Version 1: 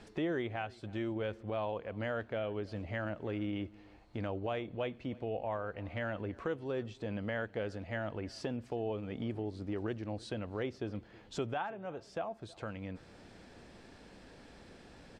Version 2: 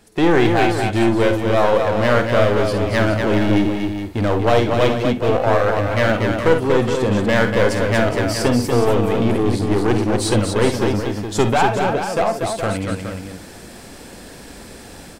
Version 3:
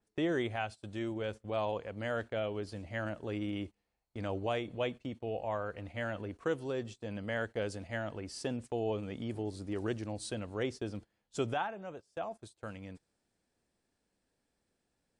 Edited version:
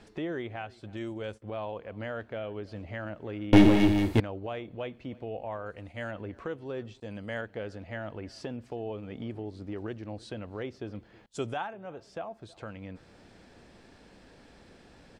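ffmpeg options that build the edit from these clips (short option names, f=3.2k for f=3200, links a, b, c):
-filter_complex "[2:a]asplit=4[a][b][c][d];[0:a]asplit=6[e][f][g][h][i][j];[e]atrim=end=0.972[k];[a]atrim=start=0.968:end=1.422[l];[f]atrim=start=1.418:end=3.532[m];[1:a]atrim=start=3.528:end=4.202[n];[g]atrim=start=4.198:end=5.662[o];[b]atrim=start=5.658:end=6.112[p];[h]atrim=start=6.108:end=7.002[q];[c]atrim=start=6.998:end=7.412[r];[i]atrim=start=7.408:end=11.262[s];[d]atrim=start=11.258:end=11.732[t];[j]atrim=start=11.728[u];[k][l]acrossfade=d=0.004:c1=hsin:c2=hsin[v];[v][m]acrossfade=d=0.004:c1=hsin:c2=hsin[w];[w][n]acrossfade=d=0.004:c1=hsin:c2=hsin[x];[x][o]acrossfade=d=0.004:c1=hsin:c2=hsin[y];[y][p]acrossfade=d=0.004:c1=hsin:c2=hsin[z];[z][q]acrossfade=d=0.004:c1=hsin:c2=hsin[aa];[aa][r]acrossfade=d=0.004:c1=hsin:c2=hsin[ab];[ab][s]acrossfade=d=0.004:c1=hsin:c2=hsin[ac];[ac][t]acrossfade=d=0.004:c1=hsin:c2=hsin[ad];[ad][u]acrossfade=d=0.004:c1=hsin:c2=hsin"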